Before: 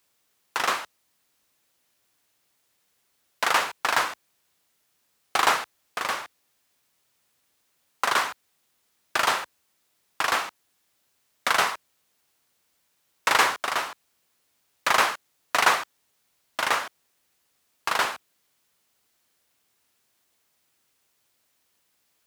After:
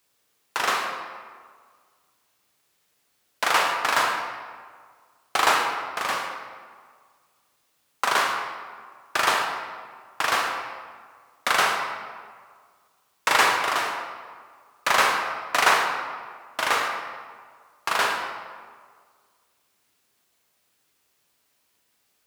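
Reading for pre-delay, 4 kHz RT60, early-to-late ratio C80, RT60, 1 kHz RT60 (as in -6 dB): 20 ms, 1.1 s, 5.0 dB, 1.8 s, 1.8 s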